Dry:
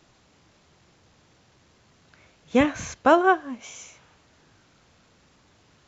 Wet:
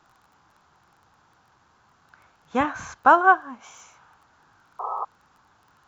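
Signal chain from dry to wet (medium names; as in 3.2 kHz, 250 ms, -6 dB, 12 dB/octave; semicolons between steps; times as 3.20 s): crackle 14 per s -41 dBFS; painted sound noise, 4.79–5.05 s, 370–1300 Hz -33 dBFS; high-order bell 1.1 kHz +12.5 dB 1.3 oct; trim -6.5 dB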